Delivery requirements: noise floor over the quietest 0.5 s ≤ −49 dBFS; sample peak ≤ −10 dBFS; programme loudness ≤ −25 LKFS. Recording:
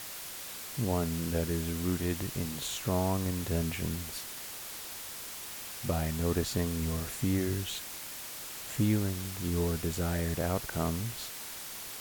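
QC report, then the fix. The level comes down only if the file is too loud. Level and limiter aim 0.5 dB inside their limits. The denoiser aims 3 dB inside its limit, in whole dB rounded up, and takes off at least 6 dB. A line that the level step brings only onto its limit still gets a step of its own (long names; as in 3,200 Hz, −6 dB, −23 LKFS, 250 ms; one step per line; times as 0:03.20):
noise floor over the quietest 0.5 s −42 dBFS: out of spec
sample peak −17.0 dBFS: in spec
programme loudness −33.5 LKFS: in spec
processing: broadband denoise 10 dB, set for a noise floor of −42 dBFS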